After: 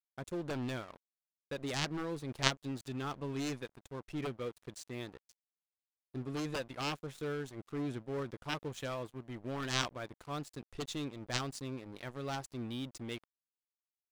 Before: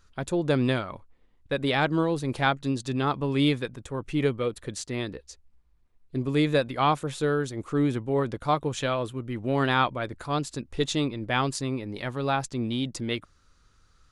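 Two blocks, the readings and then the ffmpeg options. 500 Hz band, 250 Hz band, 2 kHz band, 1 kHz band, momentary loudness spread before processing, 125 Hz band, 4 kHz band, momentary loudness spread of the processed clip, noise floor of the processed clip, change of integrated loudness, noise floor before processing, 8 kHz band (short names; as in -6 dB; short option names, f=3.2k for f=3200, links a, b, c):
-13.5 dB, -13.0 dB, -11.0 dB, -14.5 dB, 9 LU, -12.5 dB, -7.5 dB, 10 LU, under -85 dBFS, -12.0 dB, -63 dBFS, -6.0 dB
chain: -af "aeval=exprs='0.422*(cos(1*acos(clip(val(0)/0.422,-1,1)))-cos(1*PI/2))+0.188*(cos(3*acos(clip(val(0)/0.422,-1,1)))-cos(3*PI/2))':c=same,aeval=exprs='sgn(val(0))*max(abs(val(0))-0.00335,0)':c=same,volume=1dB"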